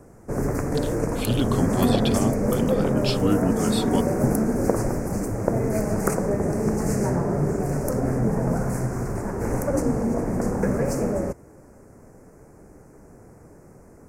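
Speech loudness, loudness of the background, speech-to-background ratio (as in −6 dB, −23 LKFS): −27.5 LKFS, −24.0 LKFS, −3.5 dB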